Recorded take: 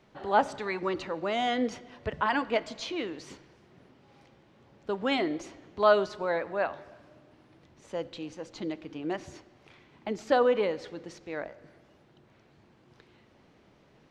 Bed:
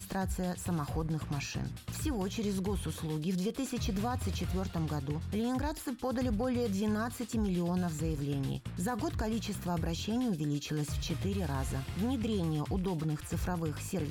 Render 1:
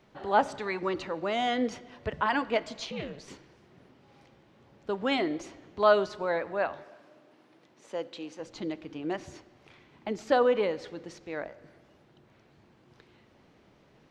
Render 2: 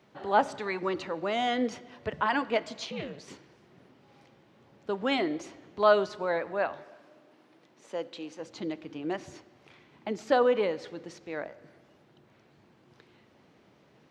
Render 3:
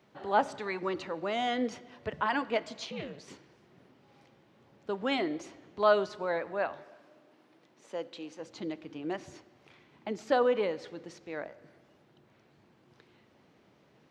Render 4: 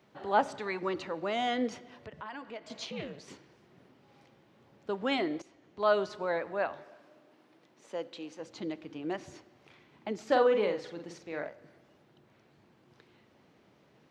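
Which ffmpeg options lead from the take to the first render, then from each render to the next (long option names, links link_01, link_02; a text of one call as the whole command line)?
ffmpeg -i in.wav -filter_complex "[0:a]asettb=1/sr,asplit=3[link_01][link_02][link_03];[link_01]atrim=end=2.854[link_04];[link_02]atrim=start=2.85:end=3.28,asetpts=PTS-STARTPTS,afade=type=in:duration=0.004:curve=qsin,afade=type=out:start_time=0.426:duration=0.004:curve=qsin,aeval=exprs='val(0)*sin(2*PI*140*n/s)':channel_layout=same[link_05];[link_03]atrim=start=3.276[link_06];[link_04][link_05]acrossfade=duration=0.004:curve1=hsin:curve2=qsin[link_07];[link_07][link_06]acrossfade=duration=0.004:curve1=qsin:curve2=hsin,asettb=1/sr,asplit=3[link_08][link_09][link_10];[link_08]atrim=end=6.844[link_11];[link_09]atrim=start=6.84:end=8.4,asetpts=PTS-STARTPTS,afade=type=in:duration=0.004:curve=qsin,afade=type=out:start_time=1.556:duration=0.004:curve=qsin,highpass=240[link_12];[link_10]atrim=start=8.396[link_13];[link_11][link_12]acrossfade=duration=0.004:curve1=hsin:curve2=qsin[link_14];[link_14][link_13]acrossfade=duration=0.004:curve1=qsin:curve2=hsin" out.wav
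ffmpeg -i in.wav -af "highpass=97" out.wav
ffmpeg -i in.wav -af "volume=-2.5dB" out.wav
ffmpeg -i in.wav -filter_complex "[0:a]asettb=1/sr,asplit=3[link_01][link_02][link_03];[link_01]atrim=end=1.984[link_04];[link_02]atrim=start=1.98:end=2.7,asetpts=PTS-STARTPTS,afade=type=in:duration=0.004:curve=qsin,afade=type=out:start_time=0.716:duration=0.004:curve=qsin,acompressor=threshold=-49dB:ratio=2:attack=3.2:release=140:knee=1:detection=peak[link_05];[link_03]atrim=start=2.696[link_06];[link_04][link_05]acrossfade=duration=0.004:curve1=hsin:curve2=qsin[link_07];[link_07][link_06]acrossfade=duration=0.004:curve1=qsin:curve2=hsin,asettb=1/sr,asplit=3[link_08][link_09][link_10];[link_08]atrim=end=10.254[link_11];[link_09]atrim=start=10.25:end=11.49,asetpts=PTS-STARTPTS,afade=type=in:duration=0.004:curve=qsin,afade=type=out:start_time=1.236:duration=0.004:curve=qsin,asplit=2[link_12][link_13];[link_13]adelay=47,volume=-6dB[link_14];[link_12][link_14]amix=inputs=2:normalize=0,atrim=end_sample=54684[link_15];[link_10]atrim=start=11.486[link_16];[link_11][link_15]acrossfade=duration=0.004:curve1=hsin:curve2=qsin[link_17];[link_17][link_16]acrossfade=duration=0.004:curve1=qsin:curve2=hsin,asplit=2[link_18][link_19];[link_18]atrim=end=5.42,asetpts=PTS-STARTPTS,afade=type=out:start_time=5.416:duration=0.004:curve=hsin:silence=0.199526[link_20];[link_19]atrim=start=5.42,asetpts=PTS-STARTPTS,afade=type=in:duration=0.67:silence=0.199526[link_21];[link_20][link_21]concat=n=2:v=0:a=1" out.wav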